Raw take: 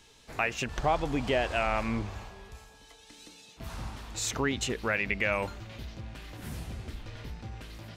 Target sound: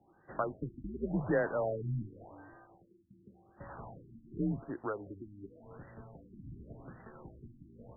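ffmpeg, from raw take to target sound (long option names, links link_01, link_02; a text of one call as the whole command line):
ffmpeg -i in.wav -filter_complex "[0:a]asettb=1/sr,asplit=3[link_01][link_02][link_03];[link_01]atrim=end=4.644[link_04];[link_02]atrim=start=4.64:end=5.64,asetpts=PTS-STARTPTS,afade=type=in:duration=0.004:curve=qsin,afade=type=out:start_time=0.996:duration=0.004:curve=qsin,equalizer=frequency=125:width_type=o:width=1:gain=-11,equalizer=frequency=250:width_type=o:width=1:gain=-8,equalizer=frequency=2000:width_type=o:width=1:gain=-12[link_05];[link_03]atrim=start=5.636[link_06];[link_04][link_05]acrossfade=duration=0.004:curve1=hsin:curve2=qsin[link_07];[link_07][link_06]acrossfade=duration=0.004:curve1=qsin:curve2=hsin,highpass=frequency=180:width_type=q:width=0.5412,highpass=frequency=180:width_type=q:width=1.307,lowpass=frequency=3100:width_type=q:width=0.5176,lowpass=frequency=3100:width_type=q:width=0.7071,lowpass=frequency=3100:width_type=q:width=1.932,afreqshift=-100,afftfilt=real='re*lt(b*sr/1024,330*pow(2000/330,0.5+0.5*sin(2*PI*0.89*pts/sr)))':imag='im*lt(b*sr/1024,330*pow(2000/330,0.5+0.5*sin(2*PI*0.89*pts/sr)))':win_size=1024:overlap=0.75,volume=-1.5dB" out.wav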